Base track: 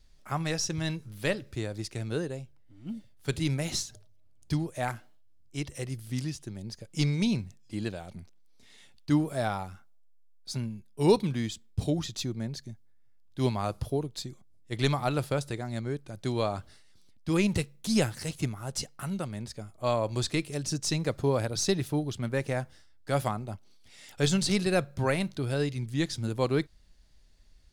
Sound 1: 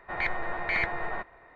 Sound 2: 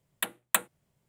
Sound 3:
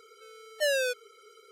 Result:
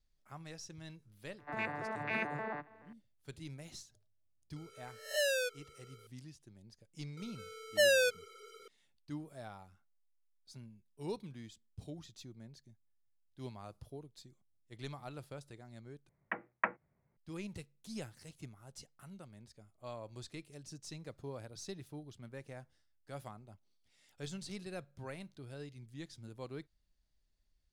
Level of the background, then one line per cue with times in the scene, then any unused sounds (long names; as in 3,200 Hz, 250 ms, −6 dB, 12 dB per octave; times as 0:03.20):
base track −18.5 dB
0:01.38: mix in 1 −6 dB + vocoder with an arpeggio as carrier bare fifth, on D3, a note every 143 ms
0:04.56: mix in 3 −6 dB + peak hold with a rise ahead of every peak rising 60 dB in 0.46 s
0:07.17: mix in 3
0:16.09: overwrite with 2 −2 dB + elliptic low-pass filter 2,200 Hz, stop band 50 dB